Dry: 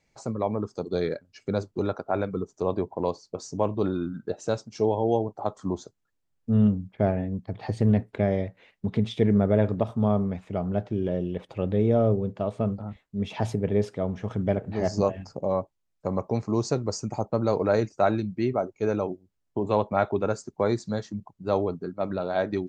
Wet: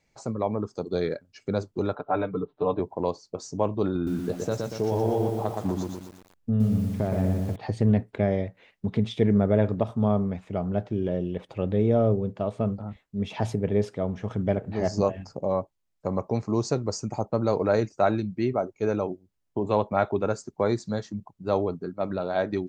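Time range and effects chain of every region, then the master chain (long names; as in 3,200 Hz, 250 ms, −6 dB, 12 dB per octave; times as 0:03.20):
0:01.95–0:02.80: Chebyshev low-pass with heavy ripple 4,000 Hz, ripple 3 dB + comb filter 6.8 ms, depth 93%
0:03.95–0:07.56: low-shelf EQ 230 Hz +6.5 dB + downward compressor 3 to 1, threshold −22 dBFS + feedback echo at a low word length 119 ms, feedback 55%, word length 8 bits, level −3 dB
whole clip: no processing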